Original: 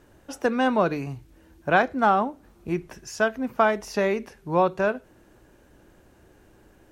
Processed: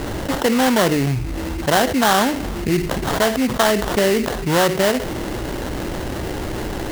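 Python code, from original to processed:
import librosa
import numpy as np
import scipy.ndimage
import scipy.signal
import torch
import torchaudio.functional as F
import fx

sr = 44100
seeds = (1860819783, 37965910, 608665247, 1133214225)

y = fx.env_lowpass_down(x, sr, base_hz=1400.0, full_db=-20.0)
y = fx.sample_hold(y, sr, seeds[0], rate_hz=2400.0, jitter_pct=20)
y = fx.env_flatten(y, sr, amount_pct=70)
y = y * 10.0 ** (2.5 / 20.0)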